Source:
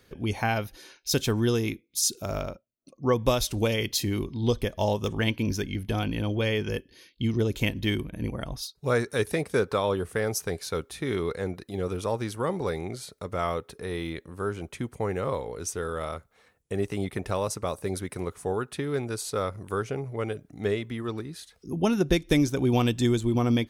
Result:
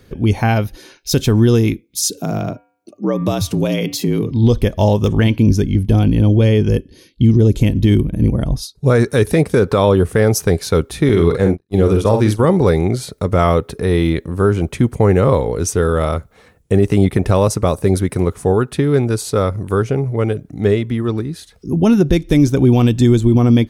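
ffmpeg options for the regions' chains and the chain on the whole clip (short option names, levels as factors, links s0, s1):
-filter_complex "[0:a]asettb=1/sr,asplit=3[s0][s1][s2];[s0]atrim=end=2.104[s3];[s1]atrim=start=2.1:end=4.31,asetpts=PTS-STARTPTS,afade=t=in:d=0.004:c=qsin,afade=t=out:st=2.206:d=0.004:c=qsin,bandreject=f=222.6:t=h:w=4,bandreject=f=445.2:t=h:w=4,bandreject=f=667.8:t=h:w=4,bandreject=f=890.4:t=h:w=4,bandreject=f=1113:t=h:w=4,bandreject=f=1335.6:t=h:w=4,bandreject=f=1558.2:t=h:w=4,bandreject=f=1780.8:t=h:w=4,bandreject=f=2003.4:t=h:w=4,bandreject=f=2226:t=h:w=4,bandreject=f=2448.6:t=h:w=4,bandreject=f=2671.2:t=h:w=4,bandreject=f=2893.8:t=h:w=4,acompressor=threshold=0.0398:ratio=2.5:attack=3.2:release=140:knee=1:detection=peak,afreqshift=64[s4];[s2]atrim=start=4.306[s5];[s3][s4]acrossfade=d=0.004:c1=hsin:c2=qsin[s6];[s6][s5]acrossfade=d=0.004:c1=qsin:c2=hsin,asettb=1/sr,asplit=3[s7][s8][s9];[s7]atrim=end=5.394[s10];[s8]atrim=start=5.39:end=8.9,asetpts=PTS-STARTPTS,afade=t=in:d=0.004:c=qsin,afade=t=out:st=3.506:d=0.004:c=qsin,lowpass=f=12000:w=0.5412,lowpass=f=12000:w=1.3066,equalizer=f=1800:t=o:w=2.7:g=-7.5[s11];[s9]atrim=start=8.896[s12];[s10][s11]acrossfade=d=0.004:c1=hsin:c2=qsin[s13];[s13][s12]acrossfade=d=0.004:c1=qsin:c2=hsin,asettb=1/sr,asplit=3[s14][s15][s16];[s14]atrim=end=11.094[s17];[s15]atrim=start=11.09:end=12.45,asetpts=PTS-STARTPTS,afade=t=in:d=0.004:c=qsin,afade=t=out:st=1.356:d=0.004:c=qsin,asplit=2[s18][s19];[s19]adelay=47,volume=0.447[s20];[s18][s20]amix=inputs=2:normalize=0,atrim=end_sample=59976,agate=range=0.00562:threshold=0.0158:ratio=16:release=100:detection=peak[s21];[s16]atrim=start=12.446[s22];[s17][s21]acrossfade=d=0.004:c1=hsin:c2=qsin[s23];[s23][s22]acrossfade=d=0.004:c1=qsin:c2=hsin,lowshelf=f=440:g=10,dynaudnorm=f=940:g=11:m=2.24,alimiter=level_in=2.66:limit=0.891:release=50:level=0:latency=1,volume=0.794"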